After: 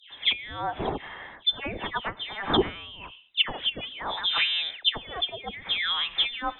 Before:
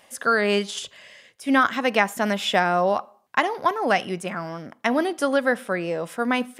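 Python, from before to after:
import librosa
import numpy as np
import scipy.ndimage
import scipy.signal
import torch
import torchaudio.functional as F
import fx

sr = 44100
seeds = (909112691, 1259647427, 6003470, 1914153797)

y = fx.dispersion(x, sr, late='highs', ms=137.0, hz=1800.0)
y = fx.freq_invert(y, sr, carrier_hz=3800)
y = fx.env_lowpass_down(y, sr, base_hz=580.0, full_db=-18.0)
y = y * librosa.db_to_amplitude(6.5)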